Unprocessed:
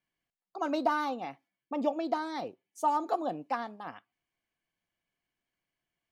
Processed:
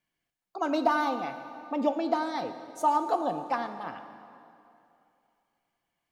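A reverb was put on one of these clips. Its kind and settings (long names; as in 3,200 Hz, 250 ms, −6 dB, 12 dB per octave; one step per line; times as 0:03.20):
dense smooth reverb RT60 2.7 s, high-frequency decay 0.8×, pre-delay 0 ms, DRR 8.5 dB
level +3 dB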